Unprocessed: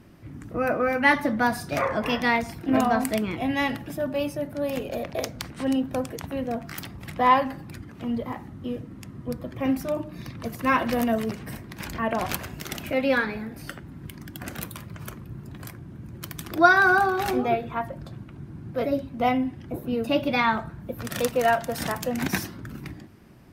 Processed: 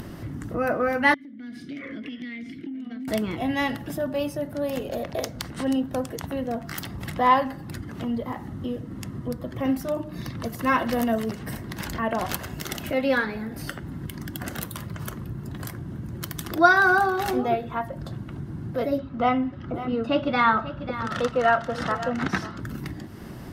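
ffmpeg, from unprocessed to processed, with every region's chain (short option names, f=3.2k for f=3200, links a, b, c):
-filter_complex "[0:a]asettb=1/sr,asplit=3[a][b][c];[a]atrim=end=1.144[d];[b]atrim=start=1.14:end=3.08,asetpts=PTS-STARTPTS,afade=t=in:d=0.004:c=qsin,afade=t=out:st=1.936:d=0.004:c=qsin,asplit=3[e][f][g];[e]bandpass=f=270:t=q:w=8,volume=0dB[h];[f]bandpass=f=2.29k:t=q:w=8,volume=-6dB[i];[g]bandpass=f=3.01k:t=q:w=8,volume=-9dB[j];[h][i][j]amix=inputs=3:normalize=0,acompressor=threshold=-40dB:ratio=8:attack=3.2:release=140:knee=1:detection=peak[k];[c]atrim=start=3.076[l];[d][k]acrossfade=d=0.004:c1=hsin:c2=qsin[m];[m][l]acrossfade=d=0.004:c1=qsin:c2=hsin,asettb=1/sr,asplit=3[n][o][p];[n]atrim=end=18.984[q];[o]atrim=start=18.98:end=22.6,asetpts=PTS-STARTPTS,afade=t=in:d=0.004:c=qsin,afade=t=out:st=3.616:d=0.004:c=qsin,lowpass=4.1k,equalizer=f=1.3k:w=5.2:g=12,aecho=1:1:543:0.2,atrim=end_sample=159642[r];[p]atrim=start=22.596[s];[q][r]acrossfade=d=0.004:c1=hsin:c2=qsin[t];[t][s]acrossfade=d=0.004:c1=qsin:c2=hsin,bandreject=f=2.4k:w=7.9,acompressor=mode=upward:threshold=-26dB:ratio=2.5"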